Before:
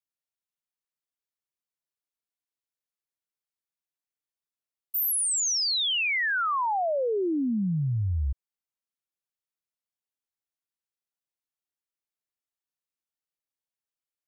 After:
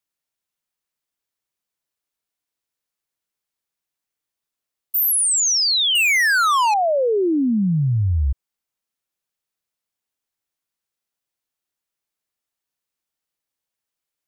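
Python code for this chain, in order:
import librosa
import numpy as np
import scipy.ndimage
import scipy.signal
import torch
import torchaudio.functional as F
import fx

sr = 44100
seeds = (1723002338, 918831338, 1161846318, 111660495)

y = fx.leveller(x, sr, passes=3, at=(5.95, 6.74))
y = F.gain(torch.from_numpy(y), 8.0).numpy()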